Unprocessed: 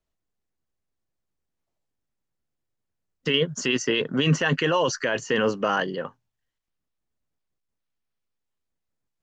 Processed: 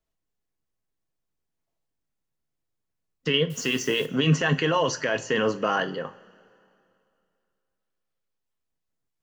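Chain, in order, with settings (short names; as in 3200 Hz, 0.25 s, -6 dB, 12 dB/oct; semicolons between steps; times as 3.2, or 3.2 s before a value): 3.5–4.06 requantised 8-bit, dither triangular; two-slope reverb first 0.31 s, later 2.6 s, from -21 dB, DRR 8.5 dB; gain -1.5 dB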